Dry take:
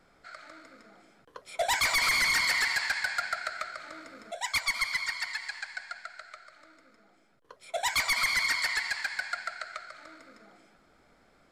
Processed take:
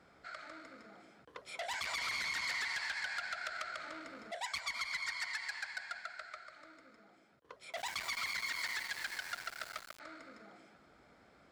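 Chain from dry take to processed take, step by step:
high-pass filter 48 Hz 24 dB per octave
high-shelf EQ 8,900 Hz −11 dB
downward compressor 10 to 1, threshold −33 dBFS, peak gain reduction 9 dB
0:07.73–0:10.00: centre clipping without the shift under −42.5 dBFS
saturating transformer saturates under 4,000 Hz

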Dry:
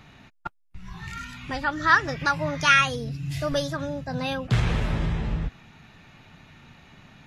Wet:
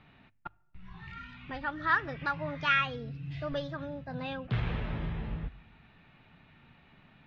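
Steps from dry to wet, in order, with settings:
low-pass filter 3,600 Hz 24 dB per octave
mains-hum notches 50/100 Hz
on a send: convolution reverb RT60 0.90 s, pre-delay 4 ms, DRR 23.5 dB
on the sum: level −8.5 dB

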